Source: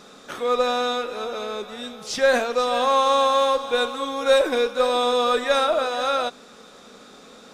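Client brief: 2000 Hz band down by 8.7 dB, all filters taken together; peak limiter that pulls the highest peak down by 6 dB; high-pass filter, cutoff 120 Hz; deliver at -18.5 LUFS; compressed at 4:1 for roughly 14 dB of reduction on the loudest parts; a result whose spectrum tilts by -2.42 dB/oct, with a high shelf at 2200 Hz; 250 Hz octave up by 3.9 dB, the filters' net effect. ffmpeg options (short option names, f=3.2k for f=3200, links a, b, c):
-af "highpass=120,equalizer=f=250:t=o:g=4.5,equalizer=f=2k:t=o:g=-9,highshelf=f=2.2k:g=-7,acompressor=threshold=-32dB:ratio=4,volume=17.5dB,alimiter=limit=-10.5dB:level=0:latency=1"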